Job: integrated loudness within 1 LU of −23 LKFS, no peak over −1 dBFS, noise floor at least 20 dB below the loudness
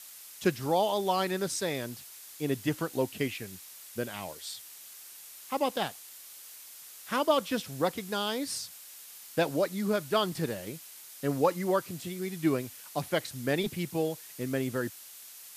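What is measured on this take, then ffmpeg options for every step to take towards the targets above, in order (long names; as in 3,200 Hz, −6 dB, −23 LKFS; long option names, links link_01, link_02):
background noise floor −49 dBFS; target noise floor −52 dBFS; integrated loudness −31.5 LKFS; sample peak −12.5 dBFS; target loudness −23.0 LKFS
→ -af "afftdn=noise_reduction=6:noise_floor=-49"
-af "volume=8.5dB"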